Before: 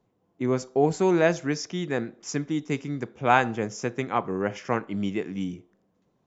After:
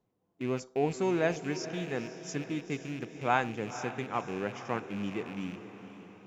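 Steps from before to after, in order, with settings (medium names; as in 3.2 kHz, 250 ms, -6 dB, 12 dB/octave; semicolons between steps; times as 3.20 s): rattle on loud lows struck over -37 dBFS, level -28 dBFS; echo that smears into a reverb 493 ms, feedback 52%, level -12 dB; trim -7.5 dB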